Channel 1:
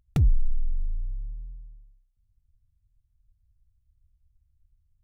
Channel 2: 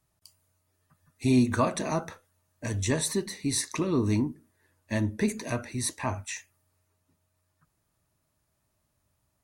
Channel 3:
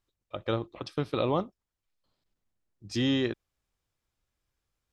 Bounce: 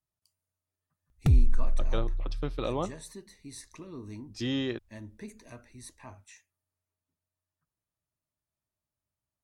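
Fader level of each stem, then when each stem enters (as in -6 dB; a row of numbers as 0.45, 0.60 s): 0.0, -17.0, -4.0 dB; 1.10, 0.00, 1.45 s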